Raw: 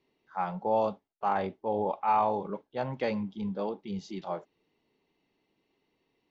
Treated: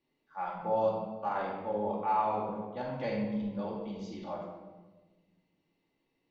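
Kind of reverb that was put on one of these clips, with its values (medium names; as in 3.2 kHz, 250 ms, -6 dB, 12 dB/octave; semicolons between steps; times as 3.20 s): simulated room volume 840 m³, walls mixed, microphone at 2.4 m; trim -8.5 dB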